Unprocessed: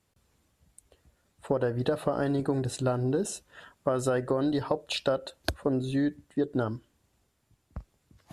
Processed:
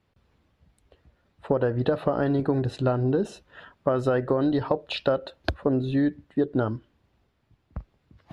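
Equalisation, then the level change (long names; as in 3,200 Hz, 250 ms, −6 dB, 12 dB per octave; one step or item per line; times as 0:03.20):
high-frequency loss of the air 330 metres
high-shelf EQ 4,900 Hz +11.5 dB
+4.5 dB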